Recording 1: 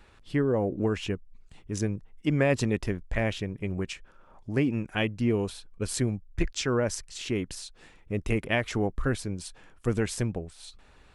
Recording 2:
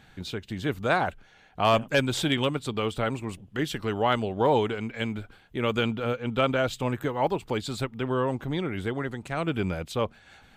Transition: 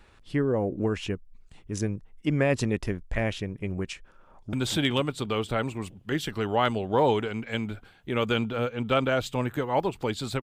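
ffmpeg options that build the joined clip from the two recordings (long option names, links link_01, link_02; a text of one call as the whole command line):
ffmpeg -i cue0.wav -i cue1.wav -filter_complex "[0:a]apad=whole_dur=10.42,atrim=end=10.42,atrim=end=4.532[link_01];[1:a]atrim=start=1.998:end=7.89[link_02];[link_01][link_02]acrossfade=duration=0.004:curve1=hsin:curve2=hsin,asplit=2[link_03][link_04];[link_04]afade=type=in:start_time=4.24:duration=0.01,afade=type=out:start_time=4.53:duration=0.01,aecho=0:1:240|480|720|960|1200|1440:0.562341|0.281171|0.140585|0.0702927|0.0351463|0.0175732[link_05];[link_03][link_05]amix=inputs=2:normalize=0" out.wav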